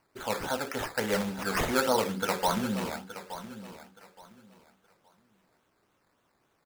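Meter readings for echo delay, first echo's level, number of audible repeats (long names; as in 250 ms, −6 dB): 871 ms, −13.0 dB, 2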